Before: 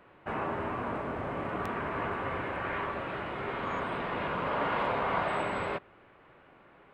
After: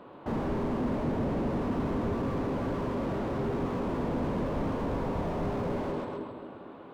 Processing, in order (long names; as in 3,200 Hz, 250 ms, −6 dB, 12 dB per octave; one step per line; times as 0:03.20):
graphic EQ with 10 bands 125 Hz +4 dB, 250 Hz +12 dB, 500 Hz +7 dB, 1,000 Hz +8 dB, 2,000 Hz −7 dB, 4,000 Hz +9 dB
echo with a time of its own for lows and highs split 440 Hz, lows 237 ms, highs 135 ms, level −5.5 dB
slew-rate limiting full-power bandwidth 14 Hz